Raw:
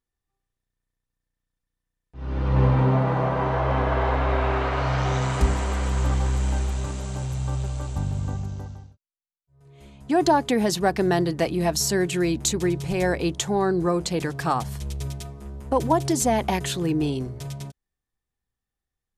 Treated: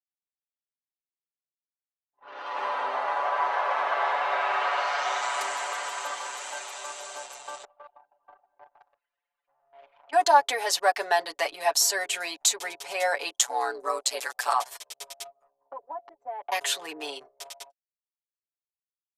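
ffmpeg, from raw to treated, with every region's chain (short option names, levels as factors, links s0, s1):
-filter_complex "[0:a]asettb=1/sr,asplit=3[s0][s1][s2];[s0]atrim=end=2.284[s3];[s1]atrim=start=2.28:end=7.01,asetpts=PTS-STARTPTS,afade=t=in:d=0.004:c=qsin,afade=t=out:st=4.726:d=0.004:c=qsin,highpass=f=340:p=1,acompressor=mode=upward:threshold=0.0178:ratio=2.5:attack=3.2:release=140:knee=2.83:detection=peak[s4];[s2]atrim=start=7.006[s5];[s3][s4]acrossfade=d=0.004:c1=hsin:c2=qsin[s6];[s6][s5]acrossfade=d=0.004:c1=qsin:c2=hsin,asettb=1/sr,asplit=3[s7][s8][s9];[s7]atrim=end=7.644[s10];[s8]atrim=start=7.64:end=10.13,asetpts=PTS-STARTPTS,afade=t=in:d=0.004:c=qsin,afade=t=out:st=2.486:d=0.004:c=qsin,aeval=exprs='val(0)+0.5*0.0141*sgn(val(0))':c=same,acompressor=threshold=0.0251:ratio=4:attack=3.2:release=140:knee=1:detection=peak,highpass=210,lowpass=3100[s11];[s9]atrim=start=10.126[s12];[s10][s11]acrossfade=d=0.004:c1=hsin:c2=qsin[s13];[s13][s12]acrossfade=d=0.004:c1=qsin:c2=hsin,asettb=1/sr,asplit=3[s14][s15][s16];[s14]atrim=end=13.344[s17];[s15]atrim=start=13.34:end=14.53,asetpts=PTS-STARTPTS,afade=t=in:d=0.004:c=qsin,afade=t=out:st=1.186:d=0.004:c=qsin,aemphasis=mode=production:type=cd,aeval=exprs='val(0)*sin(2*PI*62*n/s)':c=same[s18];[s16]atrim=start=14.526[s19];[s17][s18]acrossfade=d=0.004:c1=hsin:c2=qsin[s20];[s20][s19]acrossfade=d=0.004:c1=qsin:c2=hsin,asettb=1/sr,asplit=3[s21][s22][s23];[s21]atrim=end=15.504[s24];[s22]atrim=start=15.5:end=16.52,asetpts=PTS-STARTPTS,afade=t=in:d=0.004:c=qsin,afade=t=out:st=1.016:d=0.004:c=qsin,lowpass=1200,acompressor=threshold=0.0224:ratio=4:attack=3.2:release=140:knee=1:detection=peak[s25];[s23]atrim=start=16.516[s26];[s24][s25]acrossfade=d=0.004:c1=hsin:c2=qsin[s27];[s27][s26]acrossfade=d=0.004:c1=qsin:c2=hsin,highpass=f=620:w=0.5412,highpass=f=620:w=1.3066,anlmdn=0.0631,aecho=1:1:7:0.85"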